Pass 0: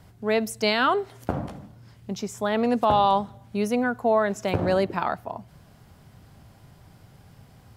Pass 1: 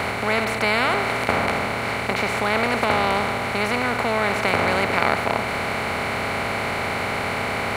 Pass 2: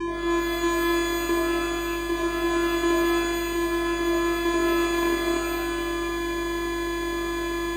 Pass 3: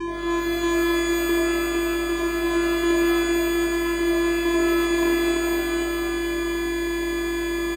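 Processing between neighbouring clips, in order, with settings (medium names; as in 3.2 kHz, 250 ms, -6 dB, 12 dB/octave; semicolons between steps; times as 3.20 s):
spectral levelling over time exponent 0.2; peaking EQ 2.2 kHz +12 dB 0.51 oct; trim -7.5 dB
vocoder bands 4, square 341 Hz; hum 50 Hz, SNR 17 dB; pitch-shifted reverb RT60 1.1 s, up +12 st, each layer -2 dB, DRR 2.5 dB; trim -4.5 dB
delay 455 ms -4 dB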